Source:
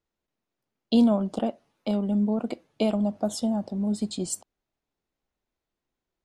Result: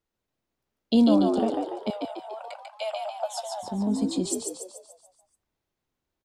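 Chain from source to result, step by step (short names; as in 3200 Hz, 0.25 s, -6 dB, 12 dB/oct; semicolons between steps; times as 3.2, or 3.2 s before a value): 1.9–3.63 rippled Chebyshev high-pass 540 Hz, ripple 3 dB; frequency-shifting echo 0.144 s, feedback 50%, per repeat +63 Hz, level -3.5 dB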